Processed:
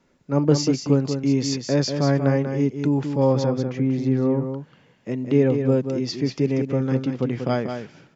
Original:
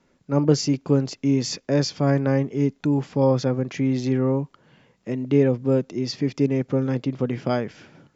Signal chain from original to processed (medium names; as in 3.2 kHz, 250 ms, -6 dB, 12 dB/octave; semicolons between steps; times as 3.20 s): 3.46–4.42 s: treble shelf 2.2 kHz -11.5 dB; delay 189 ms -7 dB